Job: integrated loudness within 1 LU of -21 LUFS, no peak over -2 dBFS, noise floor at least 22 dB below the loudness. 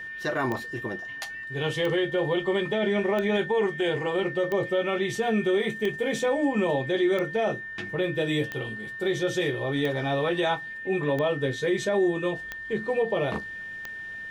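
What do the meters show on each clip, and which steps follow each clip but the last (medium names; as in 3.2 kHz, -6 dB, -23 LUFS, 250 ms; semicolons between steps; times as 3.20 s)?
clicks found 11; steady tone 1.8 kHz; tone level -35 dBFS; loudness -27.0 LUFS; peak level -14.0 dBFS; loudness target -21.0 LUFS
-> de-click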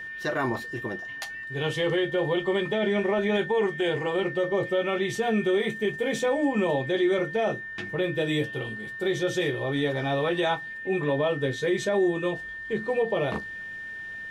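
clicks found 0; steady tone 1.8 kHz; tone level -35 dBFS
-> band-stop 1.8 kHz, Q 30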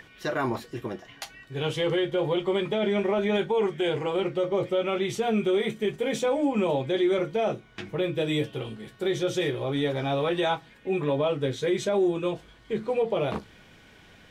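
steady tone not found; loudness -27.0 LUFS; peak level -14.5 dBFS; loudness target -21.0 LUFS
-> trim +6 dB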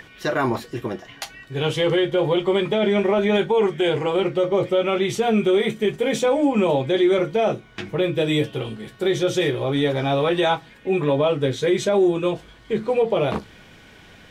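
loudness -21.0 LUFS; peak level -8.5 dBFS; noise floor -48 dBFS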